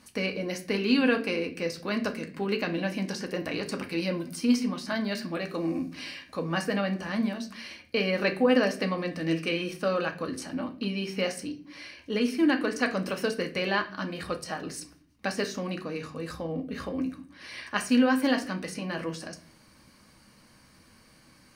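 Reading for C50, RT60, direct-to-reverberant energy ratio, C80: 13.5 dB, no single decay rate, 4.0 dB, 18.5 dB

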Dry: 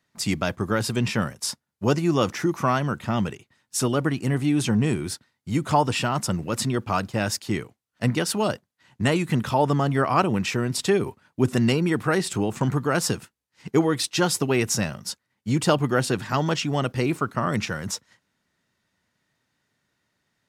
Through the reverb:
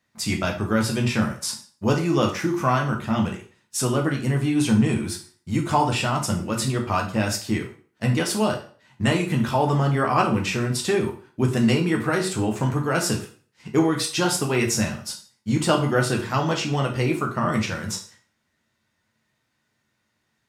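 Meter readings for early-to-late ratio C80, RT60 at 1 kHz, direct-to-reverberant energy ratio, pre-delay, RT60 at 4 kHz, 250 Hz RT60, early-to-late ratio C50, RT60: 14.0 dB, 0.45 s, 0.5 dB, 4 ms, 0.40 s, 0.40 s, 9.5 dB, 0.45 s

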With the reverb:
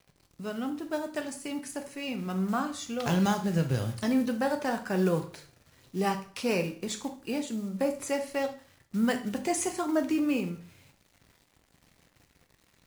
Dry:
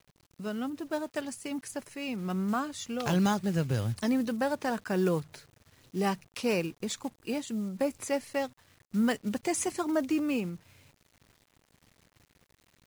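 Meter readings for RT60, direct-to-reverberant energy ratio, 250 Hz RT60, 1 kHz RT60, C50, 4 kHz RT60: 0.45 s, 5.5 dB, 0.45 s, 0.45 s, 11.5 dB, 0.45 s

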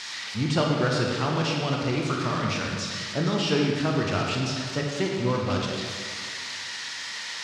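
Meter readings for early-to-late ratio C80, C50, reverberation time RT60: 2.5 dB, 1.0 dB, 2.1 s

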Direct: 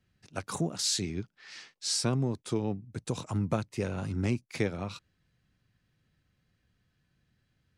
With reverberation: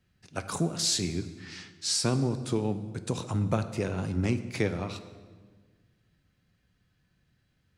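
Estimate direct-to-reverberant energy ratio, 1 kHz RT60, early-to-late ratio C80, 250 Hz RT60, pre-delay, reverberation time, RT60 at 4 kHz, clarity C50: 10.0 dB, 1.4 s, 13.5 dB, 1.8 s, 7 ms, 1.5 s, 1.1 s, 12.0 dB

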